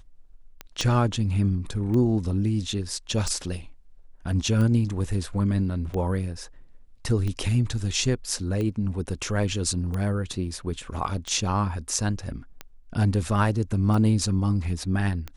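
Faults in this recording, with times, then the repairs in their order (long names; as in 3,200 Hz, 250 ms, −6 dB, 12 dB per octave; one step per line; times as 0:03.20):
scratch tick 45 rpm −19 dBFS
0:00.81: click −13 dBFS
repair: click removal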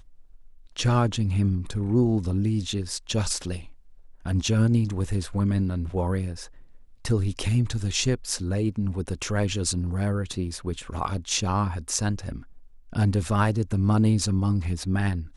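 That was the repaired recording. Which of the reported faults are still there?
0:00.81: click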